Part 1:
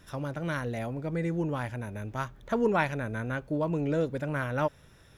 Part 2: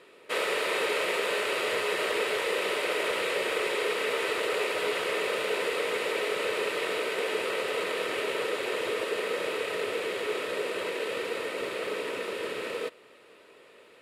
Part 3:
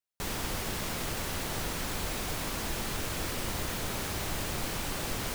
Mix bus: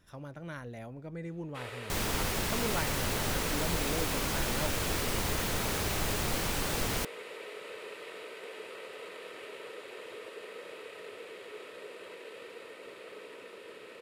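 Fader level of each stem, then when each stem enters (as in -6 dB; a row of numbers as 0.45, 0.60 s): -10.0, -14.5, +2.0 dB; 0.00, 1.25, 1.70 s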